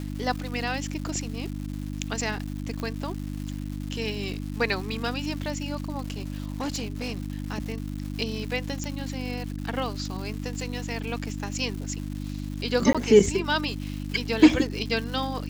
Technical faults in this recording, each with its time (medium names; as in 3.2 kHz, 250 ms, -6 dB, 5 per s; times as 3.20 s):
crackle 370 per s -35 dBFS
hum 50 Hz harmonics 6 -33 dBFS
2.80 s: pop -19 dBFS
6.00–7.18 s: clipped -26 dBFS
8.84 s: pop -18 dBFS
12.93–12.95 s: dropout 16 ms